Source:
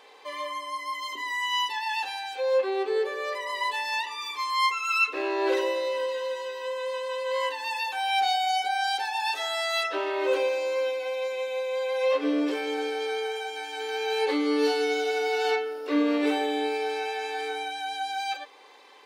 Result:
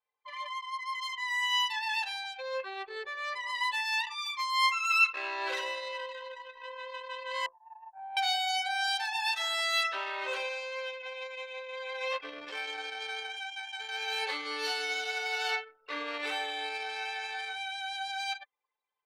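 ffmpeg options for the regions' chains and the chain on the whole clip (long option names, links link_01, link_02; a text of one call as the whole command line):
ffmpeg -i in.wav -filter_complex "[0:a]asettb=1/sr,asplit=3[link_01][link_02][link_03];[link_01]atrim=end=7.464[link_04];[link_02]atrim=start=7.46:end=8.17,asetpts=PTS-STARTPTS,afade=type=in:duration=0.004:curve=qsin,afade=type=out:start_time=0.706:duration=0.004:curve=qsin,tremolo=f=160:d=0.71,asuperpass=centerf=520:order=4:qfactor=0.86[link_05];[link_03]atrim=start=8.166[link_06];[link_04][link_05]acrossfade=duration=0.004:curve1=hsin:curve2=qsin[link_07];[link_07][link_06]acrossfade=duration=0.004:curve1=qsin:curve2=hsin,highpass=1100,anlmdn=1.58" out.wav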